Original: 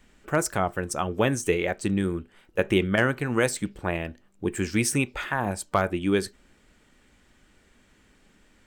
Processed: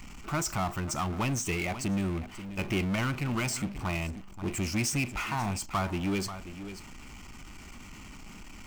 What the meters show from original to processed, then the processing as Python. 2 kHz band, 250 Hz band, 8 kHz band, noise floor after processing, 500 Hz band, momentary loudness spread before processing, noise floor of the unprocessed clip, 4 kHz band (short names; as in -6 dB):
-6.5 dB, -4.5 dB, -2.0 dB, -47 dBFS, -11.5 dB, 8 LU, -61 dBFS, -2.0 dB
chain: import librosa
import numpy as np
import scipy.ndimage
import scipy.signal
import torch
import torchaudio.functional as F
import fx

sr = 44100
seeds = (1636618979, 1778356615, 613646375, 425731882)

y = fx.fixed_phaser(x, sr, hz=2500.0, stages=8)
y = y + 10.0 ** (-22.5 / 20.0) * np.pad(y, (int(535 * sr / 1000.0), 0))[:len(y)]
y = fx.power_curve(y, sr, exponent=0.5)
y = F.gain(torch.from_numpy(y), -8.0).numpy()